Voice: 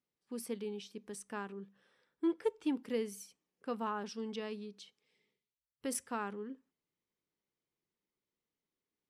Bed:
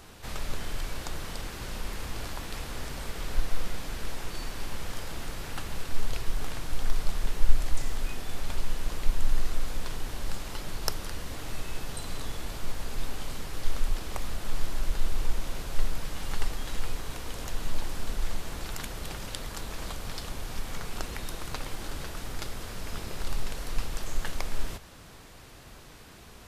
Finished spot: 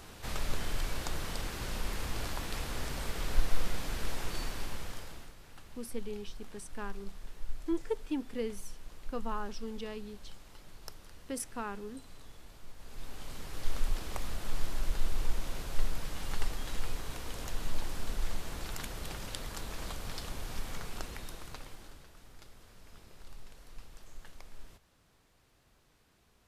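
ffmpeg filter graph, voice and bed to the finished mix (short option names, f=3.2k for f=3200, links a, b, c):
-filter_complex "[0:a]adelay=5450,volume=-0.5dB[a];[1:a]volume=13dB,afade=t=out:st=4.38:d=0.96:silence=0.149624,afade=t=in:st=12.76:d=1.03:silence=0.211349,afade=t=out:st=20.63:d=1.41:silence=0.177828[b];[a][b]amix=inputs=2:normalize=0"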